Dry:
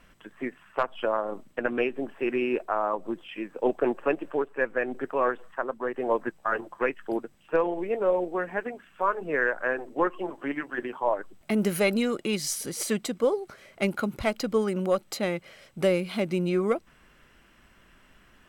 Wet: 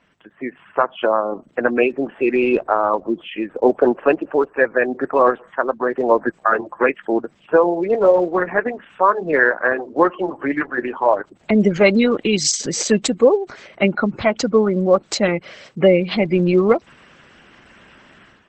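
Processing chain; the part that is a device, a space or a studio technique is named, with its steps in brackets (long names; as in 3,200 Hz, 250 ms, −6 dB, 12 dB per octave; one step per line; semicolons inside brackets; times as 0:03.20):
noise-suppressed video call (high-pass filter 100 Hz 12 dB per octave; gate on every frequency bin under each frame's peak −25 dB strong; automatic gain control gain up to 13.5 dB; Opus 12 kbit/s 48,000 Hz)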